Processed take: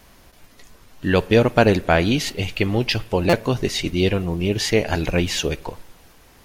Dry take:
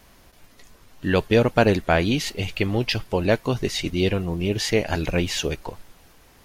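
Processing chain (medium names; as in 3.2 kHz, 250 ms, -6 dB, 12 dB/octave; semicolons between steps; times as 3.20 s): on a send at -21 dB: reverberation RT60 0.85 s, pre-delay 45 ms; on the sum: buffer glitch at 3.29 s, samples 256, times 6; trim +2.5 dB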